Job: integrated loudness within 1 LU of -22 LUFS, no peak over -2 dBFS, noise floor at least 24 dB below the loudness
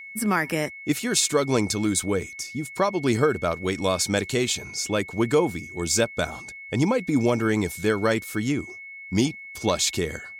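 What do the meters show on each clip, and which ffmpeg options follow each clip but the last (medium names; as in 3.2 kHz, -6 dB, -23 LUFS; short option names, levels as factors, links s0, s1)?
steady tone 2.2 kHz; tone level -38 dBFS; loudness -24.5 LUFS; peak level -8.5 dBFS; loudness target -22.0 LUFS
-> -af "bandreject=f=2200:w=30"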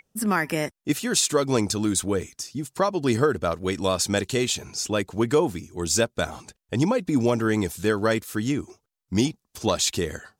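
steady tone not found; loudness -24.5 LUFS; peak level -8.5 dBFS; loudness target -22.0 LUFS
-> -af "volume=1.33"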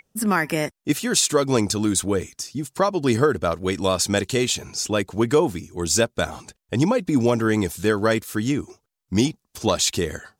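loudness -22.0 LUFS; peak level -6.0 dBFS; noise floor -78 dBFS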